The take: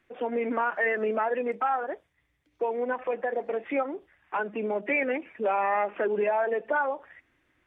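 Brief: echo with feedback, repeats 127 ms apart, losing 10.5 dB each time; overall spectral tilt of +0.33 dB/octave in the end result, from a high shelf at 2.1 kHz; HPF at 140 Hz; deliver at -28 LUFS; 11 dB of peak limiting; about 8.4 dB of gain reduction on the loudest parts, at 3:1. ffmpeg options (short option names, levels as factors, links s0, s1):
-af "highpass=140,highshelf=f=2100:g=-8.5,acompressor=threshold=0.0178:ratio=3,alimiter=level_in=3.35:limit=0.0631:level=0:latency=1,volume=0.299,aecho=1:1:127|254|381:0.299|0.0896|0.0269,volume=5.01"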